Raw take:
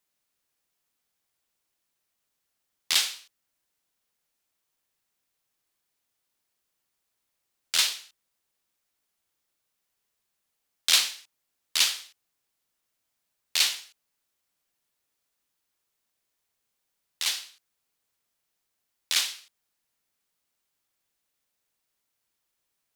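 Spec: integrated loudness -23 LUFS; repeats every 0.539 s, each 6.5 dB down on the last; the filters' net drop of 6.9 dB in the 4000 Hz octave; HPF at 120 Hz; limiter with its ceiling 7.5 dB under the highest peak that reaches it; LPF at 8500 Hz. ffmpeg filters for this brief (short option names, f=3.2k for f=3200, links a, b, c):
-af "highpass=120,lowpass=8.5k,equalizer=f=4k:t=o:g=-8.5,alimiter=limit=-18dB:level=0:latency=1,aecho=1:1:539|1078|1617|2156|2695|3234:0.473|0.222|0.105|0.0491|0.0231|0.0109,volume=13.5dB"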